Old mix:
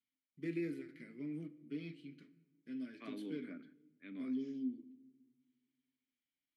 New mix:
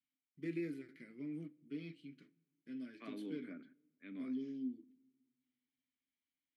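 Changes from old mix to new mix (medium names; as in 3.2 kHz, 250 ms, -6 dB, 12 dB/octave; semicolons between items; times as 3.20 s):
first voice: send -10.5 dB; second voice: add distance through air 80 m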